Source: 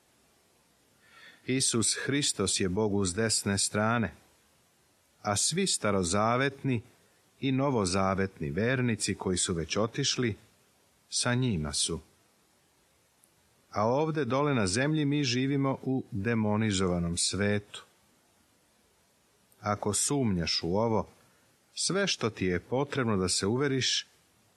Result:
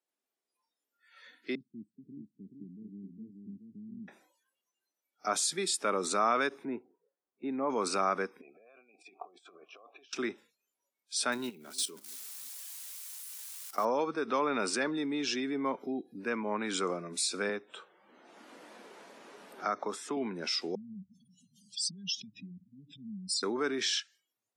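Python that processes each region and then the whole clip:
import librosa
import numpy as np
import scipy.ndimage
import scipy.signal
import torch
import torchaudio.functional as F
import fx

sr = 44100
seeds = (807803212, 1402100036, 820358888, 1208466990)

y = fx.chain(x, sr, fx.cheby2_lowpass(hz=530.0, order=4, stop_db=50),
    fx.echo_single(ms=428, db=-4.5), at=(1.55, 4.08))
y = fx.chain(y, sr, fx.lowpass(hz=1300.0, slope=12),
    fx.peak_eq(hz=80.0, db=-3.0, octaves=2.0), at=(6.65, 7.7))
y = fx.chain(y, sr, fx.over_compress(threshold_db=-33.0, ratio=-0.5),
    fx.vowel_filter(vowel='a'), at=(8.41, 10.13))
y = fx.chain(y, sr, fx.crossing_spikes(level_db=-33.5),
    fx.level_steps(step_db=14),
    fx.echo_warbled(ms=326, feedback_pct=46, rate_hz=2.8, cents=165, wet_db=-23.0), at=(11.32, 13.85))
y = fx.chain(y, sr, fx.high_shelf(hz=6400.0, db=-11.0),
    fx.band_squash(depth_pct=70), at=(17.49, 20.17))
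y = fx.chain(y, sr, fx.spec_expand(power=2.8),
    fx.cheby1_bandstop(low_hz=200.0, high_hz=3100.0, order=4),
    fx.env_flatten(amount_pct=50), at=(20.75, 23.43))
y = scipy.signal.sosfilt(scipy.signal.butter(4, 250.0, 'highpass', fs=sr, output='sos'), y)
y = fx.noise_reduce_blind(y, sr, reduce_db=23)
y = fx.dynamic_eq(y, sr, hz=1200.0, q=2.7, threshold_db=-47.0, ratio=4.0, max_db=6)
y = F.gain(torch.from_numpy(y), -3.0).numpy()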